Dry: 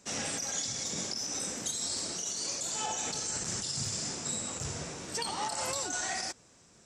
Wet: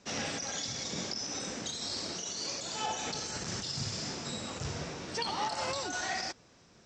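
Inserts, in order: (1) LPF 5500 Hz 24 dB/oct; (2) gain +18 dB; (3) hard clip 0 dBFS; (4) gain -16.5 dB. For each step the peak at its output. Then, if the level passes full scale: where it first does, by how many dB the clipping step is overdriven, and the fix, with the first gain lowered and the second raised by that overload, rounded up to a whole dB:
-22.5, -4.5, -4.5, -21.0 dBFS; no overload

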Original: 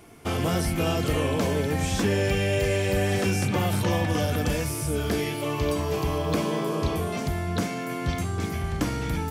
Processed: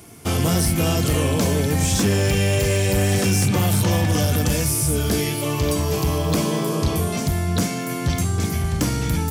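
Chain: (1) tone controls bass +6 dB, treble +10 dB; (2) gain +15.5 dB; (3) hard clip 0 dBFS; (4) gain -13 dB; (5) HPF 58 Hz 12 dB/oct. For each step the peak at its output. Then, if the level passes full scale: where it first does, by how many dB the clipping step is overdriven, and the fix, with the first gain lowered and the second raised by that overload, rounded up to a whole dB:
-8.0, +7.5, 0.0, -13.0, -7.5 dBFS; step 2, 7.5 dB; step 2 +7.5 dB, step 4 -5 dB

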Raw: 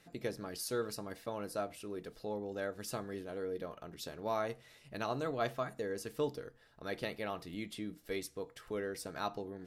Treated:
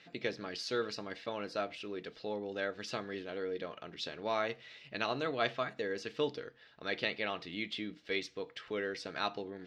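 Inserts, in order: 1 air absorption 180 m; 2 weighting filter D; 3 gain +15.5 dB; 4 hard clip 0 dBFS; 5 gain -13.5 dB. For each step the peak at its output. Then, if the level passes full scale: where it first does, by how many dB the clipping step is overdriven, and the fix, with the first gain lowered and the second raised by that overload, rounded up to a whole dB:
-23.0, -17.5, -2.0, -2.0, -15.5 dBFS; no overload

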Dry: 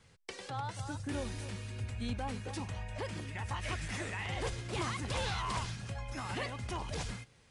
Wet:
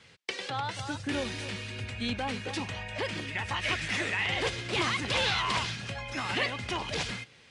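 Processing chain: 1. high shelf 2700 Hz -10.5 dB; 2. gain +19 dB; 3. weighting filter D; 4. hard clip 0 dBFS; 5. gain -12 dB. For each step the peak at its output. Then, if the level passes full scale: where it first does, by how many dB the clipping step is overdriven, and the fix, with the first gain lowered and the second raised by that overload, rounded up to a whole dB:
-24.5, -5.5, -3.5, -3.5, -15.5 dBFS; no overload

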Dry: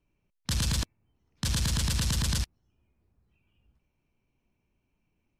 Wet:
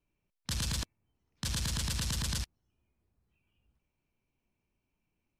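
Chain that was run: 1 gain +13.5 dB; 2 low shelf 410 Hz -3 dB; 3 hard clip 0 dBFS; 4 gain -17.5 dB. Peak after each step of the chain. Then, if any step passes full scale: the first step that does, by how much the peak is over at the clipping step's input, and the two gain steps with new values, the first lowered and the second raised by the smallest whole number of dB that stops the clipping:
-3.0, -3.0, -3.0, -20.5 dBFS; no overload

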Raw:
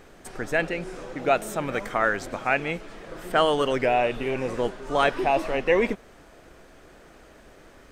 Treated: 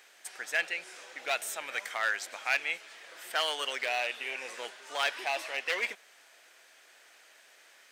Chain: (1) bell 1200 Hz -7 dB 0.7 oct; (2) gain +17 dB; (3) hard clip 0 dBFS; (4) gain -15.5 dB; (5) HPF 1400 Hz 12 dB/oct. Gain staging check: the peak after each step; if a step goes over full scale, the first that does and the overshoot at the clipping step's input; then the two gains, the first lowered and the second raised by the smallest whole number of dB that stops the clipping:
-8.5, +8.5, 0.0, -15.5, -13.5 dBFS; step 2, 8.5 dB; step 2 +8 dB, step 4 -6.5 dB

